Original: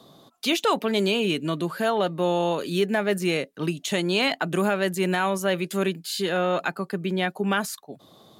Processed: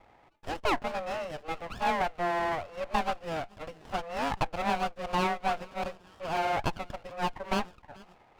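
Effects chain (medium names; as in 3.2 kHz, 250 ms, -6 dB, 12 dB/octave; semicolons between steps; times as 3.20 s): mistuned SSB +160 Hz 550–2200 Hz; feedback echo behind a high-pass 432 ms, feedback 46%, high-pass 1.8 kHz, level -17 dB; sliding maximum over 17 samples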